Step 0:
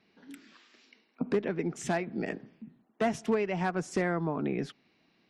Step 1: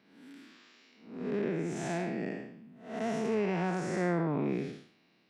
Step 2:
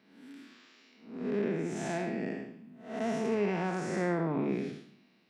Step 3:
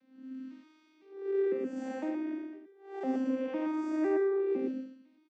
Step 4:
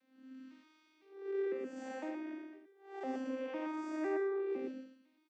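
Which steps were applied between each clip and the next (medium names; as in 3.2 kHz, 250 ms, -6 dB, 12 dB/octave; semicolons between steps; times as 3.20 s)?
spectral blur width 239 ms; high-pass 92 Hz; trim +2.5 dB
de-hum 47.88 Hz, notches 3; on a send at -12.5 dB: reverberation RT60 0.65 s, pre-delay 3 ms
vocoder on a broken chord minor triad, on C4, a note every 505 ms; on a send: delay 123 ms -5 dB
high-pass 630 Hz 6 dB/octave; trim -1 dB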